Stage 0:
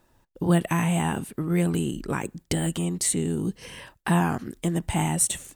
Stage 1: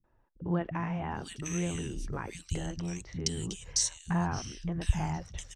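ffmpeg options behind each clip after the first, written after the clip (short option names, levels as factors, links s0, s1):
-filter_complex "[0:a]lowpass=f=5800:t=q:w=8.5,asubboost=boost=9:cutoff=87,acrossover=split=220|2200[s0][s1][s2];[s1]adelay=40[s3];[s2]adelay=750[s4];[s0][s3][s4]amix=inputs=3:normalize=0,volume=0.422"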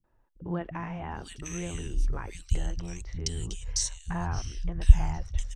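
-af "asubboost=boost=10.5:cutoff=62,volume=0.891"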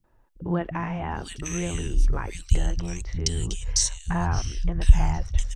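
-af "alimiter=level_in=2.37:limit=0.891:release=50:level=0:latency=1,volume=0.891"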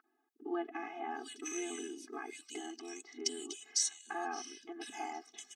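-af "aeval=exprs='val(0)+0.00794*sin(2*PI*1400*n/s)':c=same,afftfilt=real='re*eq(mod(floor(b*sr/1024/220),2),1)':imag='im*eq(mod(floor(b*sr/1024/220),2),1)':win_size=1024:overlap=0.75,volume=0.531"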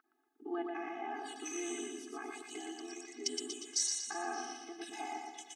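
-af "aecho=1:1:118|236|354|472|590|708:0.631|0.297|0.139|0.0655|0.0308|0.0145,volume=0.841"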